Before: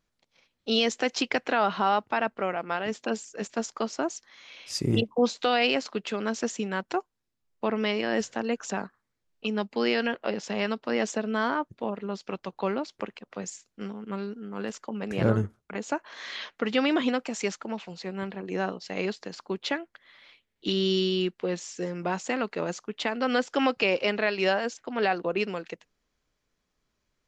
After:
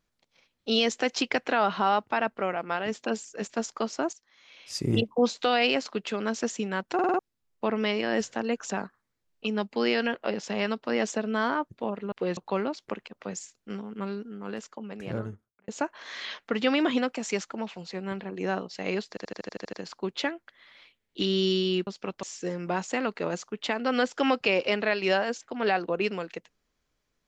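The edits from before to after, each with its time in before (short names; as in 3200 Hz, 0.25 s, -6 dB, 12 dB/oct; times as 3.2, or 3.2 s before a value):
4.13–5.01 fade in, from -16 dB
6.94 stutter in place 0.05 s, 5 plays
12.12–12.48 swap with 21.34–21.59
14.25–15.79 fade out
19.2 stutter 0.08 s, 9 plays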